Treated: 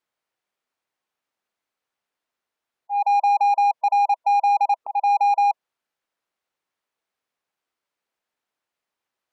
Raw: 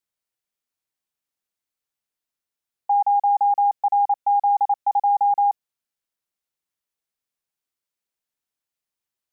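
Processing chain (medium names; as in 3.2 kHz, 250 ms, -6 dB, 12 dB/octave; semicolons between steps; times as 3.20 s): slow attack 241 ms; spectral gate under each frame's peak -25 dB strong; overdrive pedal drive 18 dB, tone 1 kHz, clips at -14 dBFS; trim +2 dB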